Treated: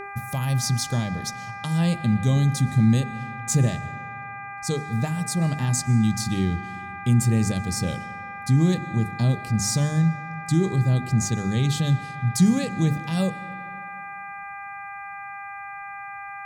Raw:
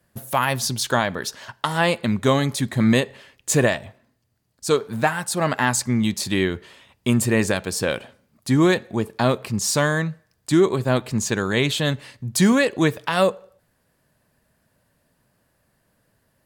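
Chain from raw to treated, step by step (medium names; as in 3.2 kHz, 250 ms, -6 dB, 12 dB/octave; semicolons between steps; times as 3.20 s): FFT filter 170 Hz 0 dB, 280 Hz -12 dB, 1.5 kHz -28 dB, 5.7 kHz -7 dB, 12 kHz -10 dB; mains buzz 400 Hz, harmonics 6, -41 dBFS -4 dB/octave; hum notches 50/100/150/200/250/300/350/400 Hz; in parallel at -0.5 dB: peak limiter -20.5 dBFS, peak gain reduction 9 dB; on the sum: treble shelf 11 kHz -5 dB; on a send at -16 dB: reverberation RT60 2.6 s, pre-delay 80 ms; on the sum: trim +1 dB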